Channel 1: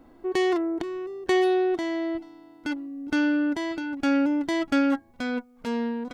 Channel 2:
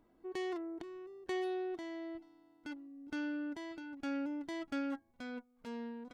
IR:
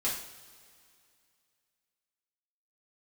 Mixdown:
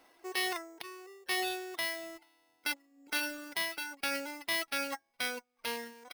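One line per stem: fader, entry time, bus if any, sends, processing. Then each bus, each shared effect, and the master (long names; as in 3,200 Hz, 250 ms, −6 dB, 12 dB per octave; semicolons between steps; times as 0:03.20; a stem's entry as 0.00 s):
−2.5 dB, 0.00 s, no send, high-pass filter 670 Hz 12 dB per octave; flat-topped bell 3,100 Hz +8.5 dB; sample-rate reduction 7,200 Hz, jitter 0%
−11.5 dB, 3.5 ms, no send, no processing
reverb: not used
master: reverb reduction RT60 1 s; brickwall limiter −23 dBFS, peak gain reduction 9 dB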